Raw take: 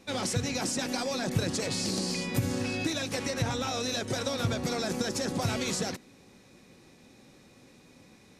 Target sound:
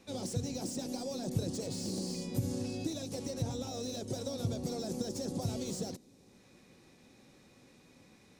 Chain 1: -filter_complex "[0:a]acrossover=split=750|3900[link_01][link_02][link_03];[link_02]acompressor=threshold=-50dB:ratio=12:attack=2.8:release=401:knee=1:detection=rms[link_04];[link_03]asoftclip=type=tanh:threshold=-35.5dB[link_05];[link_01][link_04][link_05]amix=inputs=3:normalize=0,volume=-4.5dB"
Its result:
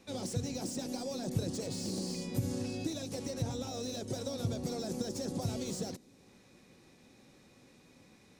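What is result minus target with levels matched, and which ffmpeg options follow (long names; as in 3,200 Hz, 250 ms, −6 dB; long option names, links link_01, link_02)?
downward compressor: peak gain reduction −6 dB
-filter_complex "[0:a]acrossover=split=750|3900[link_01][link_02][link_03];[link_02]acompressor=threshold=-56.5dB:ratio=12:attack=2.8:release=401:knee=1:detection=rms[link_04];[link_03]asoftclip=type=tanh:threshold=-35.5dB[link_05];[link_01][link_04][link_05]amix=inputs=3:normalize=0,volume=-4.5dB"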